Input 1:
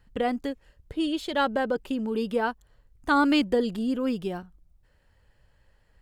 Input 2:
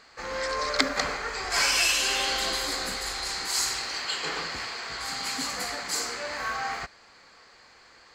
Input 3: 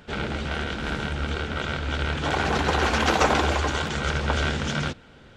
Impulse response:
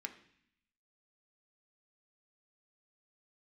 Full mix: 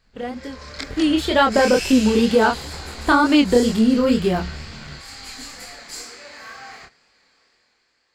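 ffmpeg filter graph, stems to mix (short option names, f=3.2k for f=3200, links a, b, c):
-filter_complex "[0:a]dynaudnorm=f=350:g=7:m=11.5dB,volume=-0.5dB[a];[1:a]equalizer=f=1.1k:t=o:w=1.3:g=-5.5,volume=-12dB,asplit=2[b][c];[c]volume=-4dB[d];[2:a]lowshelf=f=150:g=10,adelay=50,volume=-20dB[e];[a][e]amix=inputs=2:normalize=0,acompressor=threshold=-15dB:ratio=6,volume=0dB[f];[3:a]atrim=start_sample=2205[g];[d][g]afir=irnorm=-1:irlink=0[h];[b][f][h]amix=inputs=3:normalize=0,flanger=delay=22.5:depth=6.3:speed=2.1,dynaudnorm=f=160:g=9:m=8dB"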